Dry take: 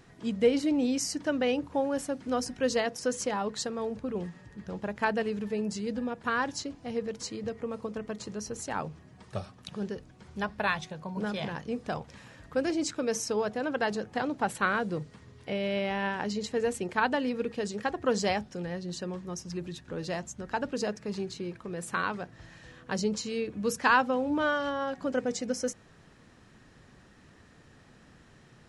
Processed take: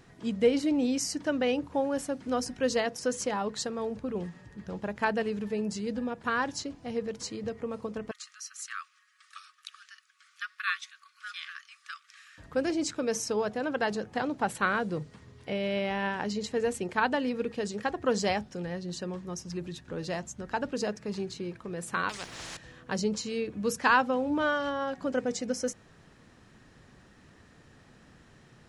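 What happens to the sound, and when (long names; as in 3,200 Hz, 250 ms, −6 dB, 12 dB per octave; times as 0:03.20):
0:08.11–0:12.38: linear-phase brick-wall high-pass 1,100 Hz
0:22.09–0:22.57: every bin compressed towards the loudest bin 4 to 1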